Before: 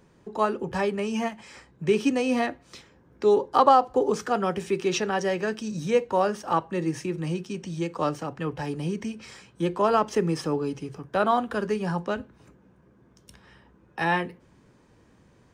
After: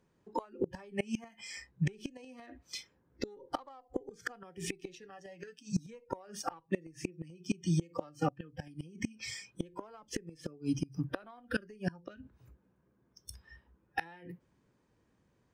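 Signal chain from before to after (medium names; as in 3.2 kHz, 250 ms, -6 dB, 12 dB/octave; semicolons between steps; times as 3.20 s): Chebyshev shaper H 6 -43 dB, 7 -37 dB, 8 -30 dB, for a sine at -4.5 dBFS; spectral noise reduction 21 dB; compression 12:1, threshold -31 dBFS, peak gain reduction 19 dB; 5.03–5.79 s: comb 6.8 ms, depth 72%; inverted gate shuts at -27 dBFS, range -25 dB; trim +7.5 dB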